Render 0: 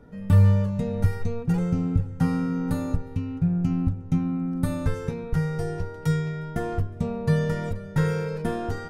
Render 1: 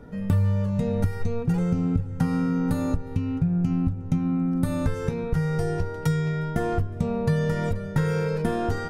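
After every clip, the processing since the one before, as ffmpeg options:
-af "acompressor=threshold=0.0501:ratio=4,volume=1.88"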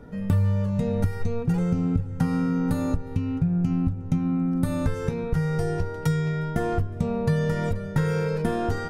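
-af anull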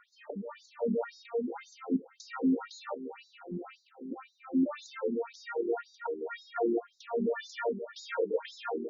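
-af "afftfilt=real='re*between(b*sr/1024,280*pow(5300/280,0.5+0.5*sin(2*PI*1.9*pts/sr))/1.41,280*pow(5300/280,0.5+0.5*sin(2*PI*1.9*pts/sr))*1.41)':imag='im*between(b*sr/1024,280*pow(5300/280,0.5+0.5*sin(2*PI*1.9*pts/sr))/1.41,280*pow(5300/280,0.5+0.5*sin(2*PI*1.9*pts/sr))*1.41)':win_size=1024:overlap=0.75,volume=1.33"

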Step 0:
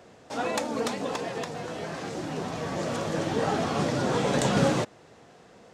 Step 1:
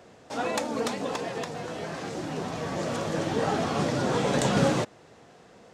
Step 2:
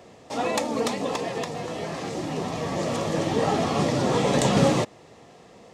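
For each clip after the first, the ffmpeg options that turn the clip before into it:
-af anull
-af "bandreject=f=1500:w=5.1,volume=1.5"

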